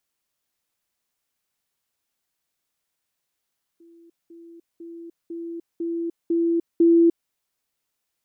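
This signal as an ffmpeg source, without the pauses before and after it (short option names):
-f lavfi -i "aevalsrc='pow(10,(-48+6*floor(t/0.5))/20)*sin(2*PI*336*t)*clip(min(mod(t,0.5),0.3-mod(t,0.5))/0.005,0,1)':d=3.5:s=44100"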